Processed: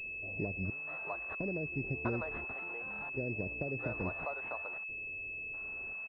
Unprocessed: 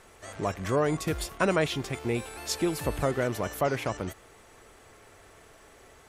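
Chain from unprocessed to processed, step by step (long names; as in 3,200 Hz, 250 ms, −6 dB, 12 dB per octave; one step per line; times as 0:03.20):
downward compressor 6 to 1, threshold −31 dBFS, peak gain reduction 10.5 dB
gate pattern "xxxx....xx" 86 BPM −24 dB
multiband delay without the direct sound lows, highs 650 ms, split 580 Hz
switching amplifier with a slow clock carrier 2,600 Hz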